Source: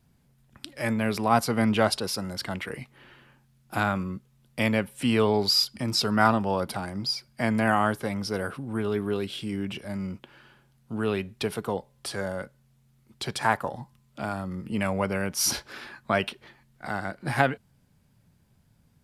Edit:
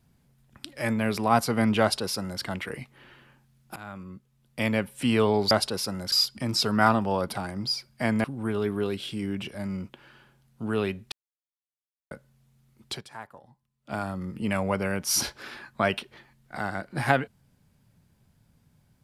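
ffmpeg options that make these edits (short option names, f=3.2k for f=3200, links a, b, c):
-filter_complex "[0:a]asplit=9[a][b][c][d][e][f][g][h][i];[a]atrim=end=3.76,asetpts=PTS-STARTPTS,afade=t=out:st=3.756:d=0.004:c=hsin:silence=0.0841395[j];[b]atrim=start=3.76:end=5.512,asetpts=PTS-STARTPTS,afade=t=in:d=1.13:silence=0.0841395[k];[c]atrim=start=1.808:end=2.422[l];[d]atrim=start=5.508:end=7.632[m];[e]atrim=start=8.538:end=11.42,asetpts=PTS-STARTPTS,afade=t=out:st=2.878:d=0.004:c=hsin[n];[f]atrim=start=11.42:end=12.41,asetpts=PTS-STARTPTS,volume=0[o];[g]atrim=start=12.41:end=13.7,asetpts=PTS-STARTPTS,afade=t=in:d=0.004:c=hsin,afade=t=out:st=0.83:d=0.46:c=exp:silence=0.125893[p];[h]atrim=start=13.7:end=13.77,asetpts=PTS-STARTPTS,volume=-18dB[q];[i]atrim=start=13.77,asetpts=PTS-STARTPTS,afade=t=in:d=0.46:c=exp:silence=0.125893[r];[j][k]concat=n=2:v=0:a=1[s];[s][l]acrossfade=d=0.004:c1=hsin:c2=hsin[t];[t][m]acrossfade=d=0.004:c1=hsin:c2=hsin[u];[n][o][p][q][r]concat=n=5:v=0:a=1[v];[u][v]acrossfade=d=0.004:c1=hsin:c2=hsin"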